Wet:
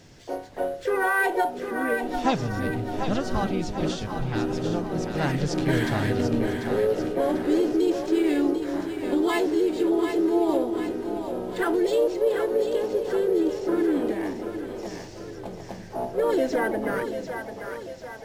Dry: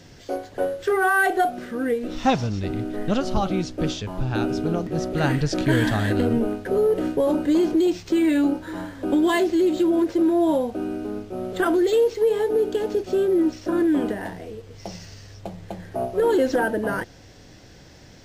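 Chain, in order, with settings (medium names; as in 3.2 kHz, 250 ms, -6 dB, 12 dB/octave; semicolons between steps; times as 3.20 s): harmony voices +4 st -7 dB; two-band feedback delay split 410 Hz, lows 334 ms, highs 743 ms, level -7 dB; trim -4.5 dB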